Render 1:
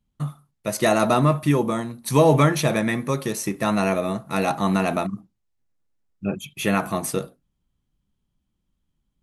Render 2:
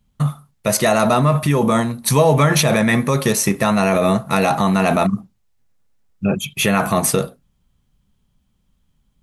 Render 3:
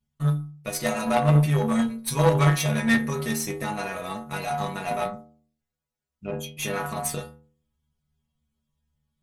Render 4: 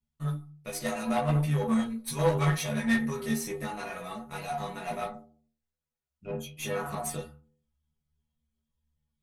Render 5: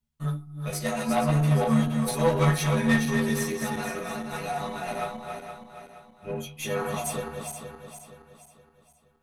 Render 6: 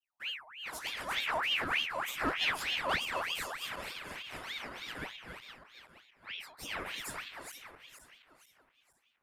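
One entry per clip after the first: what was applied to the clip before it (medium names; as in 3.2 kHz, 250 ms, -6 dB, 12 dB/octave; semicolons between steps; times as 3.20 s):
peaking EQ 320 Hz -12 dB 0.24 oct; in parallel at 0 dB: compressor with a negative ratio -25 dBFS, ratio -0.5; on the sum: trim +2.5 dB
inharmonic resonator 73 Hz, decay 0.71 s, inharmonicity 0.008; Chebyshev shaper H 3 -14 dB, 6 -25 dB, 8 -25 dB, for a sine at -12 dBFS; trim +8 dB
chorus voices 6, 1.2 Hz, delay 15 ms, depth 3.1 ms; trim -3.5 dB
backward echo that repeats 235 ms, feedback 63%, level -5.5 dB; trim +2.5 dB
ring modulator with a swept carrier 1.9 kHz, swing 60%, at 3.3 Hz; trim -8 dB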